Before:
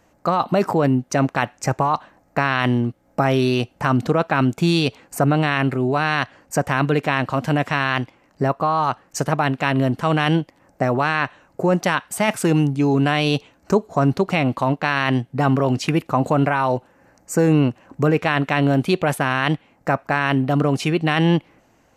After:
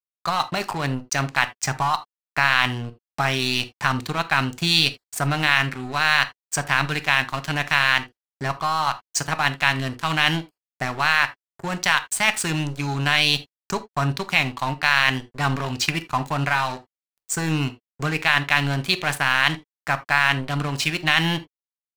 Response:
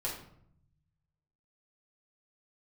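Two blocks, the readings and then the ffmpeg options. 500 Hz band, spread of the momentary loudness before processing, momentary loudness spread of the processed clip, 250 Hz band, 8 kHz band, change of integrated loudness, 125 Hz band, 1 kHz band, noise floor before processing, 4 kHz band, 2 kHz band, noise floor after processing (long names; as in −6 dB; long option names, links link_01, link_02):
−11.0 dB, 6 LU, 10 LU, −10.0 dB, +5.0 dB, −1.5 dB, −6.0 dB, −2.0 dB, −59 dBFS, +7.0 dB, +4.0 dB, below −85 dBFS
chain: -filter_complex "[0:a]equalizer=frequency=250:width_type=o:width=1:gain=-4,equalizer=frequency=500:width_type=o:width=1:gain=-11,equalizer=frequency=1000:width_type=o:width=1:gain=3,equalizer=frequency=2000:width_type=o:width=1:gain=6,equalizer=frequency=4000:width_type=o:width=1:gain=9,equalizer=frequency=8000:width_type=o:width=1:gain=8,aeval=exprs='sgn(val(0))*max(abs(val(0))-0.0398,0)':channel_layout=same,asplit=2[link_01][link_02];[1:a]atrim=start_sample=2205,atrim=end_sample=3969[link_03];[link_02][link_03]afir=irnorm=-1:irlink=0,volume=-10dB[link_04];[link_01][link_04]amix=inputs=2:normalize=0,volume=-3.5dB"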